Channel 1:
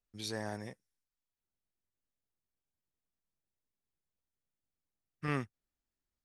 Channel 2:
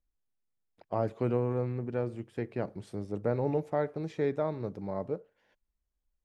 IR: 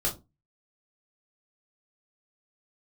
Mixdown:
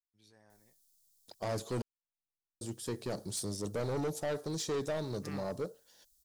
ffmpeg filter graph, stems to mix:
-filter_complex "[0:a]flanger=delay=6.9:depth=9.8:regen=74:speed=0.49:shape=triangular,volume=-8dB,afade=t=in:st=1.99:d=0.22:silence=0.237137[a];[1:a]bandreject=f=2.1k:w=13,aexciter=amount=8.9:drive=7.8:freq=3.7k,asoftclip=type=tanh:threshold=-31dB,adelay=500,volume=1dB,asplit=3[b][c][d];[b]atrim=end=1.82,asetpts=PTS-STARTPTS,afade=t=out:st=1.816:d=0.004:c=hsin[e];[c]atrim=start=1.82:end=2.61,asetpts=PTS-STARTPTS,volume=0[f];[d]atrim=start=2.61,asetpts=PTS-STARTPTS,afade=t=in:d=0.004:c=hsin[g];[e][f][g]concat=n=3:v=0:a=1[h];[a][h]amix=inputs=2:normalize=0"

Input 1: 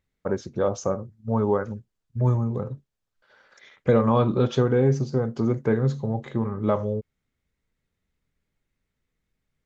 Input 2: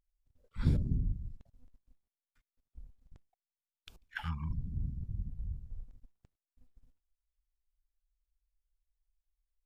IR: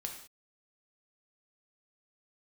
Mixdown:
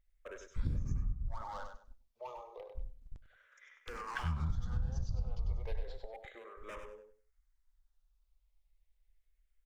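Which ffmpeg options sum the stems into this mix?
-filter_complex "[0:a]highpass=f=600:w=0.5412,highpass=f=600:w=1.3066,volume=31dB,asoftclip=hard,volume=-31dB,asplit=2[a][b];[b]afreqshift=-0.32[c];[a][c]amix=inputs=2:normalize=1,volume=-7.5dB,asplit=2[d][e];[e]volume=-7dB[f];[1:a]lowshelf=f=85:g=11,volume=-0.5dB,asplit=3[g][h][i];[h]volume=-15dB[j];[i]apad=whole_len=425866[k];[d][k]sidechaincompress=threshold=-35dB:ratio=5:attack=7:release=120[l];[f][j]amix=inputs=2:normalize=0,aecho=0:1:98|196|294:1|0.21|0.0441[m];[l][g][m]amix=inputs=3:normalize=0,acompressor=threshold=-30dB:ratio=8"

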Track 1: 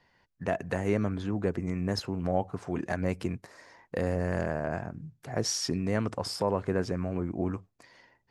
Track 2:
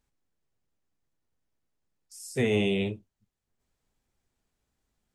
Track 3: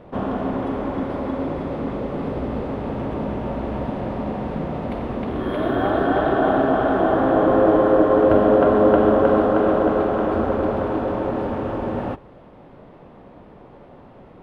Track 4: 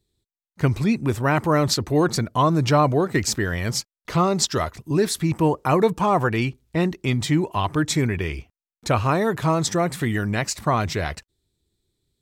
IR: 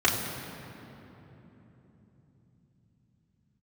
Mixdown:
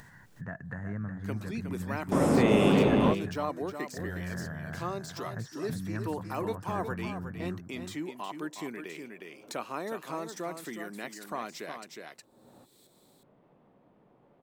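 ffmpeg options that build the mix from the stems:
-filter_complex "[0:a]firequalizer=gain_entry='entry(100,0);entry(370,-20);entry(1700,-2);entry(2400,-25)':delay=0.05:min_phase=1,volume=-0.5dB,asplit=2[a][b];[b]volume=-7.5dB[c];[1:a]volume=-1dB,asplit=3[d][e][f];[e]volume=-6.5dB[g];[2:a]adelay=500,volume=1.5dB[h];[3:a]highpass=f=230:w=0.5412,highpass=f=230:w=1.3066,deesser=0.6,highshelf=f=8.8k:g=9.5,adelay=650,volume=-15dB,asplit=2[i][j];[j]volume=-8.5dB[k];[f]apad=whole_len=658227[l];[h][l]sidechaingate=range=-54dB:threshold=-57dB:ratio=16:detection=peak[m];[c][g][k]amix=inputs=3:normalize=0,aecho=0:1:363:1[n];[a][d][m][i][n]amix=inputs=5:normalize=0,lowshelf=f=100:t=q:w=1.5:g=-8,acompressor=mode=upward:threshold=-36dB:ratio=2.5"

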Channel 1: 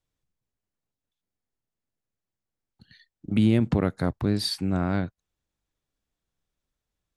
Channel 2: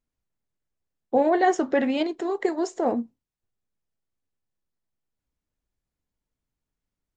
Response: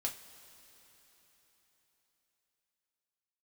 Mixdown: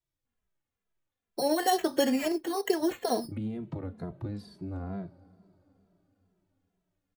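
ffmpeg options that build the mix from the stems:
-filter_complex "[0:a]acrossover=split=400|1000[a][b][c];[a]acompressor=threshold=-27dB:ratio=4[d];[b]acompressor=threshold=-35dB:ratio=4[e];[c]acompressor=threshold=-54dB:ratio=4[f];[d][e][f]amix=inputs=3:normalize=0,volume=-7.5dB,asplit=2[g][h];[h]volume=-4.5dB[i];[1:a]equalizer=f=1.7k:w=7.1:g=6.5,acompressor=threshold=-21dB:ratio=5,acrusher=samples=9:mix=1:aa=0.000001,adelay=250,volume=1dB[j];[2:a]atrim=start_sample=2205[k];[i][k]afir=irnorm=-1:irlink=0[l];[g][j][l]amix=inputs=3:normalize=0,asplit=2[m][n];[n]adelay=2.6,afreqshift=-2.2[o];[m][o]amix=inputs=2:normalize=1"

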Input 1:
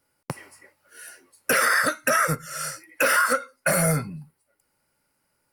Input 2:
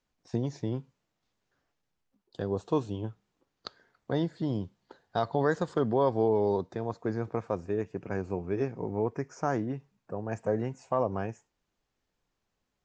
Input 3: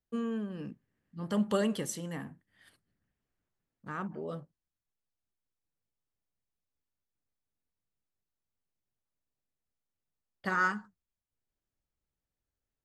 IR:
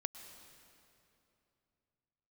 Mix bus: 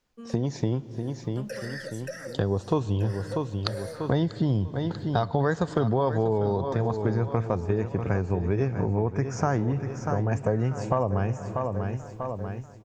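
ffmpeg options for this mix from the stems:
-filter_complex "[0:a]asplit=3[a][b][c];[a]bandpass=f=530:t=q:w=8,volume=0dB[d];[b]bandpass=f=1.84k:t=q:w=8,volume=-6dB[e];[c]bandpass=f=2.48k:t=q:w=8,volume=-9dB[f];[d][e][f]amix=inputs=3:normalize=0,highshelf=f=3.7k:t=q:w=3:g=10,volume=-7.5dB,asplit=2[g][h];[h]volume=-4dB[i];[1:a]asubboost=boost=3:cutoff=150,dynaudnorm=f=160:g=5:m=10dB,volume=3dB,asplit=3[j][k][l];[k]volume=-8dB[m];[l]volume=-9.5dB[n];[2:a]adelay=50,volume=-9dB[o];[g][o]amix=inputs=2:normalize=0,alimiter=level_in=7.5dB:limit=-24dB:level=0:latency=1:release=156,volume=-7.5dB,volume=0dB[p];[3:a]atrim=start_sample=2205[q];[i][m]amix=inputs=2:normalize=0[r];[r][q]afir=irnorm=-1:irlink=0[s];[n]aecho=0:1:641|1282|1923|2564|3205|3846:1|0.44|0.194|0.0852|0.0375|0.0165[t];[j][p][s][t]amix=inputs=4:normalize=0,acompressor=threshold=-25dB:ratio=3"

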